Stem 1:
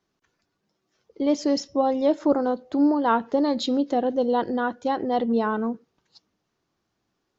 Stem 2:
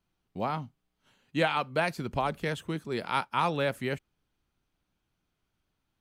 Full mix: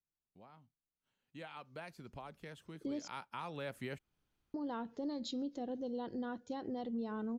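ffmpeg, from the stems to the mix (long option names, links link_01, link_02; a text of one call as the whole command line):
ffmpeg -i stem1.wav -i stem2.wav -filter_complex "[0:a]equalizer=frequency=1100:width=0.37:gain=-11,adelay=1650,volume=-5.5dB,asplit=3[link_01][link_02][link_03];[link_01]atrim=end=3.08,asetpts=PTS-STARTPTS,afade=type=out:start_time=3.076:duration=0.004:curve=hsin[link_04];[link_02]atrim=start=3.08:end=4.54,asetpts=PTS-STARTPTS,volume=0[link_05];[link_03]atrim=start=4.54,asetpts=PTS-STARTPTS,afade=type=in:duration=0.004:curve=hsin[link_06];[link_04][link_05][link_06]concat=n=3:v=0:a=1[link_07];[1:a]acompressor=threshold=-37dB:ratio=2,volume=-4dB,afade=type=in:start_time=1:duration=0.64:silence=0.334965,afade=type=in:start_time=2.7:duration=0.77:silence=0.354813[link_08];[link_07][link_08]amix=inputs=2:normalize=0,alimiter=level_in=8.5dB:limit=-24dB:level=0:latency=1:release=277,volume=-8.5dB" out.wav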